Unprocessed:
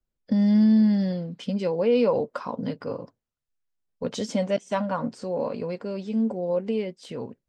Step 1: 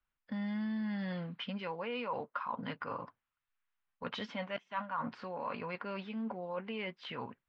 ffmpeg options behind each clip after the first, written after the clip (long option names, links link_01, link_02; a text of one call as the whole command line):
ffmpeg -i in.wav -af "lowpass=frequency=3100:width=0.5412,lowpass=frequency=3100:width=1.3066,lowshelf=frequency=740:width_type=q:width=1.5:gain=-13,areverse,acompressor=threshold=-42dB:ratio=4,areverse,volume=5.5dB" out.wav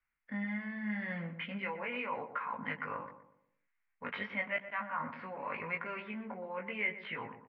ffmpeg -i in.wav -filter_complex "[0:a]flanger=delay=18:depth=2.5:speed=0.85,lowpass=frequency=2100:width_type=q:width=4.9,asplit=2[link_01][link_02];[link_02]adelay=121,lowpass=frequency=1100:poles=1,volume=-9dB,asplit=2[link_03][link_04];[link_04]adelay=121,lowpass=frequency=1100:poles=1,volume=0.42,asplit=2[link_05][link_06];[link_06]adelay=121,lowpass=frequency=1100:poles=1,volume=0.42,asplit=2[link_07][link_08];[link_08]adelay=121,lowpass=frequency=1100:poles=1,volume=0.42,asplit=2[link_09][link_10];[link_10]adelay=121,lowpass=frequency=1100:poles=1,volume=0.42[link_11];[link_01][link_03][link_05][link_07][link_09][link_11]amix=inputs=6:normalize=0" out.wav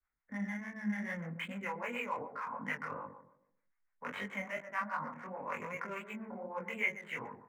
ffmpeg -i in.wav -filter_complex "[0:a]acrossover=split=490[link_01][link_02];[link_01]aeval=exprs='val(0)*(1-0.7/2+0.7/2*cos(2*PI*6.8*n/s))':channel_layout=same[link_03];[link_02]aeval=exprs='val(0)*(1-0.7/2-0.7/2*cos(2*PI*6.8*n/s))':channel_layout=same[link_04];[link_03][link_04]amix=inputs=2:normalize=0,flanger=delay=20:depth=5.9:speed=2.6,acrossover=split=240|490|2000[link_05][link_06][link_07][link_08];[link_08]aeval=exprs='sgn(val(0))*max(abs(val(0))-0.001,0)':channel_layout=same[link_09];[link_05][link_06][link_07][link_09]amix=inputs=4:normalize=0,volume=6dB" out.wav